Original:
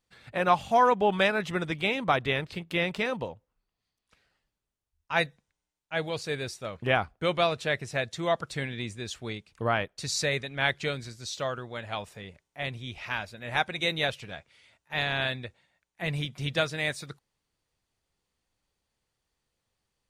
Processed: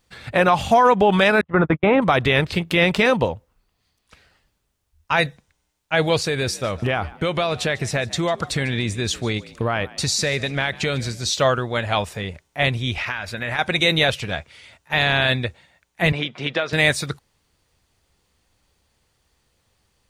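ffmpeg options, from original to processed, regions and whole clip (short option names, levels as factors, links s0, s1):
-filter_complex "[0:a]asettb=1/sr,asplit=3[s0][s1][s2];[s0]atrim=end=1.414[s3];[s1]atrim=start=1.41:end=2.02,asetpts=PTS-STARTPTS,afade=t=in:d=0.004:c=qsin,afade=t=out:st=0.606:d=0.004:c=qsin,agate=range=0.00141:threshold=0.0224:ratio=16:release=100:detection=peak,acontrast=61,lowpass=f=1200:t=q:w=1.6[s4];[s2]atrim=start=2.016[s5];[s3][s4]acrossfade=d=0.004:c1=hsin:c2=qsin[s6];[s6][s5]acrossfade=d=0.004:c1=qsin:c2=hsin,asettb=1/sr,asplit=3[s7][s8][s9];[s7]atrim=end=6.274[s10];[s8]atrim=start=6.27:end=11.3,asetpts=PTS-STARTPTS,afade=t=in:d=0.004:c=qsin,afade=t=out:st=5.026:d=0.004:c=qsin,acompressor=threshold=0.0251:ratio=6:attack=3.2:release=140:knee=1:detection=peak,asplit=4[s11][s12][s13][s14];[s12]adelay=148,afreqshift=59,volume=0.1[s15];[s13]adelay=296,afreqshift=118,volume=0.0351[s16];[s14]adelay=444,afreqshift=177,volume=0.0123[s17];[s11][s15][s16][s17]amix=inputs=4:normalize=0,atrim=end_sample=221823[s18];[s9]atrim=start=11.296[s19];[s10][s18]acrossfade=d=0.004:c1=hsin:c2=qsin[s20];[s20][s19]acrossfade=d=0.004:c1=qsin:c2=hsin,asettb=1/sr,asplit=3[s21][s22][s23];[s21]atrim=end=12.954[s24];[s22]atrim=start=12.95:end=13.59,asetpts=PTS-STARTPTS,afade=t=in:d=0.004:c=qsin,afade=t=out:st=0.636:d=0.004:c=qsin,equalizer=f=1700:w=1:g=6.5,acompressor=threshold=0.0158:ratio=10:attack=3.2:release=140:knee=1:detection=peak[s25];[s23]atrim=start=13.586[s26];[s24][s25]acrossfade=d=0.004:c1=hsin:c2=qsin[s27];[s27][s26]acrossfade=d=0.004:c1=qsin:c2=hsin,asettb=1/sr,asplit=3[s28][s29][s30];[s28]atrim=end=16.124[s31];[s29]atrim=start=16.12:end=16.73,asetpts=PTS-STARTPTS,afade=t=in:d=0.004:c=qsin,afade=t=out:st=0.606:d=0.004:c=qsin,highpass=310,lowpass=3000,acompressor=threshold=0.0282:ratio=6:attack=3.2:release=140:knee=1:detection=peak[s32];[s30]atrim=start=16.726[s33];[s31][s32]acrossfade=d=0.004:c1=hsin:c2=qsin[s34];[s34][s33]acrossfade=d=0.004:c1=qsin:c2=hsin,equalizer=f=75:t=o:w=0.63:g=6,alimiter=level_in=9.44:limit=0.891:release=50:level=0:latency=1,volume=0.531"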